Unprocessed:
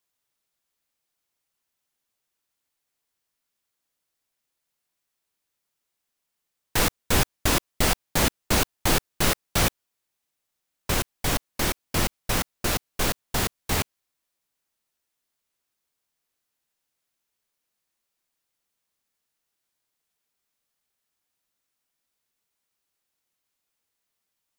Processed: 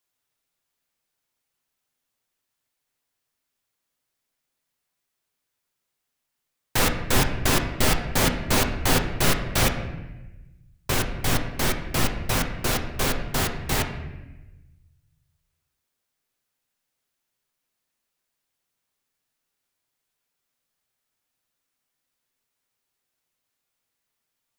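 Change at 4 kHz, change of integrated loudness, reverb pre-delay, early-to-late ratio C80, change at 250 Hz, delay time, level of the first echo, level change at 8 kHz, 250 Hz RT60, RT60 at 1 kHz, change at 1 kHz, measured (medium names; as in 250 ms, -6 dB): +0.5 dB, +1.0 dB, 8 ms, 10.0 dB, +2.5 dB, no echo, no echo, 0.0 dB, 1.5 s, 1.0 s, +1.5 dB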